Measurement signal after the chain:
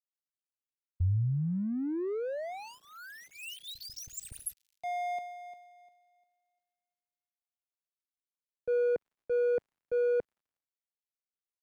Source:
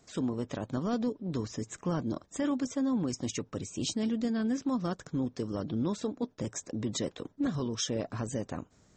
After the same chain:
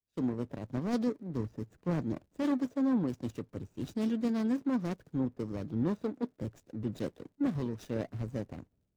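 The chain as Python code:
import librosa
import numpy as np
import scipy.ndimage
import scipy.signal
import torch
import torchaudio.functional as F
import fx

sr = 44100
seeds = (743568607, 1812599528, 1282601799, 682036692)

y = scipy.ndimage.median_filter(x, 41, mode='constant')
y = fx.dmg_crackle(y, sr, seeds[0], per_s=95.0, level_db=-61.0)
y = fx.band_widen(y, sr, depth_pct=100)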